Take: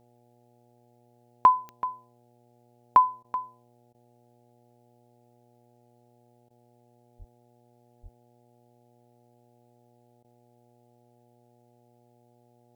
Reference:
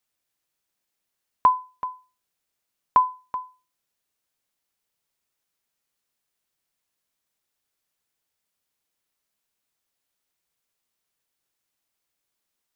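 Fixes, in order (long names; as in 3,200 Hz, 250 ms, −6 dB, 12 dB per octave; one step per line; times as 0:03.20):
click removal
hum removal 120.2 Hz, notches 7
high-pass at the plosives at 0:07.18/0:08.02
repair the gap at 0:03.23/0:03.93/0:06.49/0:10.23, 13 ms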